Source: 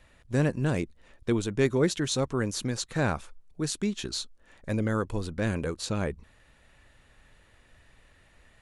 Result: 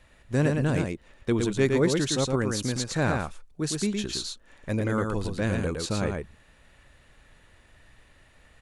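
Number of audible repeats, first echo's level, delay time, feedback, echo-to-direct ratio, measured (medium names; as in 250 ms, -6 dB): 1, -4.0 dB, 113 ms, no regular repeats, -4.0 dB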